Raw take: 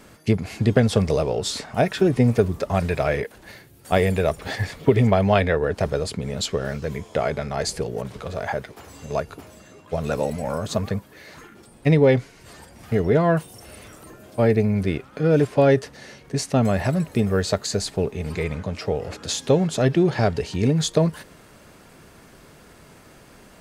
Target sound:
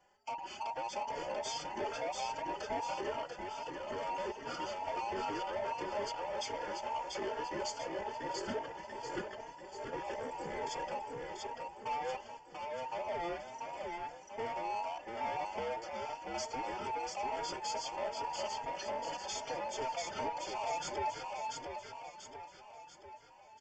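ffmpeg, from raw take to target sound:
-filter_complex "[0:a]afftfilt=real='real(if(between(b,1,1008),(2*floor((b-1)/48)+1)*48-b,b),0)':imag='imag(if(between(b,1,1008),(2*floor((b-1)/48)+1)*48-b,b),0)*if(between(b,1,1008),-1,1)':win_size=2048:overlap=0.75,agate=range=0.224:threshold=0.00794:ratio=16:detection=peak,alimiter=limit=0.211:level=0:latency=1:release=212,aresample=16000,asoftclip=type=tanh:threshold=0.0447,aresample=44100,asuperstop=centerf=3900:order=12:qfactor=5.8,asplit=2[s0][s1];[s1]aecho=0:1:689|1378|2067|2756|3445|4134:0.668|0.327|0.16|0.0786|0.0385|0.0189[s2];[s0][s2]amix=inputs=2:normalize=0,asplit=2[s3][s4];[s4]adelay=3.7,afreqshift=2.4[s5];[s3][s5]amix=inputs=2:normalize=1,volume=0.501"

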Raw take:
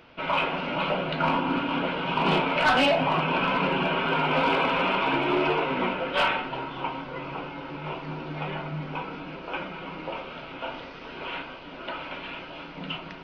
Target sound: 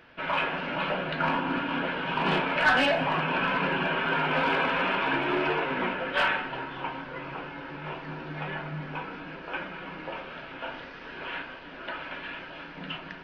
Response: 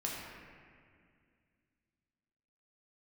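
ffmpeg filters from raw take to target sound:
-filter_complex "[0:a]equalizer=f=1700:w=5.6:g=13.5,asplit=2[s0][s1];[1:a]atrim=start_sample=2205,adelay=140[s2];[s1][s2]afir=irnorm=-1:irlink=0,volume=0.0841[s3];[s0][s3]amix=inputs=2:normalize=0,volume=0.668"

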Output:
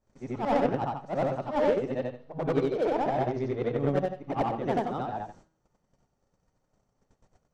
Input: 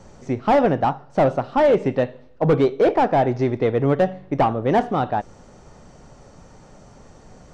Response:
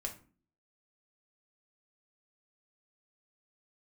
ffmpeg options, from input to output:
-filter_complex "[0:a]afftfilt=real='re':imag='-im':win_size=8192:overlap=0.75,agate=range=0.1:threshold=0.00501:ratio=16:detection=peak,adynamicequalizer=threshold=0.0158:dfrequency=1800:dqfactor=0.89:tfrequency=1800:tqfactor=0.89:attack=5:release=100:ratio=0.375:range=1.5:mode=cutabove:tftype=bell,bandreject=f=160.3:t=h:w=4,bandreject=f=320.6:t=h:w=4,bandreject=f=480.9:t=h:w=4,bandreject=f=641.2:t=h:w=4,bandreject=f=801.5:t=h:w=4,bandreject=f=961.8:t=h:w=4,bandreject=f=1122.1:t=h:w=4,bandreject=f=1282.4:t=h:w=4,bandreject=f=1442.7:t=h:w=4,bandreject=f=1603:t=h:w=4,bandreject=f=1763.3:t=h:w=4,bandreject=f=1923.6:t=h:w=4,bandreject=f=2083.9:t=h:w=4,bandreject=f=2244.2:t=h:w=4,bandreject=f=2404.5:t=h:w=4,bandreject=f=2564.8:t=h:w=4,bandreject=f=2725.1:t=h:w=4,bandreject=f=2885.4:t=h:w=4,bandreject=f=3045.7:t=h:w=4,bandreject=f=3206:t=h:w=4,bandreject=f=3366.3:t=h:w=4,bandreject=f=3526.6:t=h:w=4,bandreject=f=3686.9:t=h:w=4,bandreject=f=3847.2:t=h:w=4,bandreject=f=4007.5:t=h:w=4,bandreject=f=4167.8:t=h:w=4,bandreject=f=4328.1:t=h:w=4,bandreject=f=4488.4:t=h:w=4,bandreject=f=4648.7:t=h:w=4,bandreject=f=4809:t=h:w=4,asplit=2[s0][s1];[s1]acrusher=bits=2:mix=0:aa=0.5,volume=0.355[s2];[s0][s2]amix=inputs=2:normalize=0,volume=0.531"

